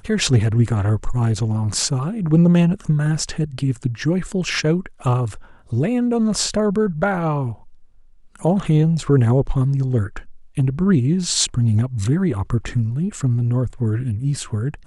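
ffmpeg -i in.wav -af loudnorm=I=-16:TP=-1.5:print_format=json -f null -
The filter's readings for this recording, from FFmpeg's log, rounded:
"input_i" : "-20.0",
"input_tp" : "-4.5",
"input_lra" : "2.8",
"input_thresh" : "-30.3",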